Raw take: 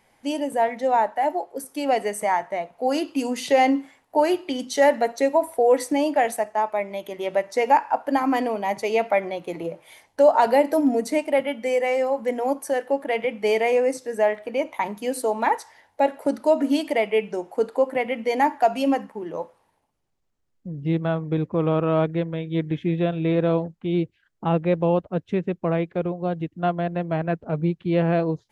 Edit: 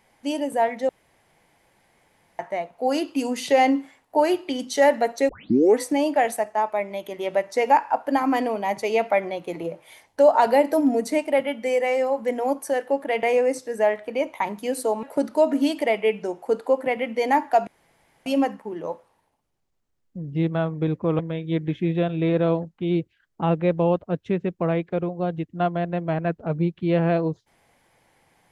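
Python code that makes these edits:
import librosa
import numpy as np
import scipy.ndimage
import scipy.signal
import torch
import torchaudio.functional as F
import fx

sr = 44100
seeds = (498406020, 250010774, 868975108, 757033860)

y = fx.edit(x, sr, fx.room_tone_fill(start_s=0.89, length_s=1.5),
    fx.tape_start(start_s=5.29, length_s=0.5),
    fx.cut(start_s=13.23, length_s=0.39),
    fx.cut(start_s=15.42, length_s=0.7),
    fx.insert_room_tone(at_s=18.76, length_s=0.59),
    fx.cut(start_s=21.69, length_s=0.53), tone=tone)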